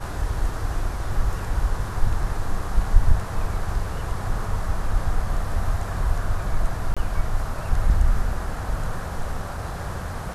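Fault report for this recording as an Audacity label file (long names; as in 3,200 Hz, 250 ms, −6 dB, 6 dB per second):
6.940000	6.970000	drop-out 26 ms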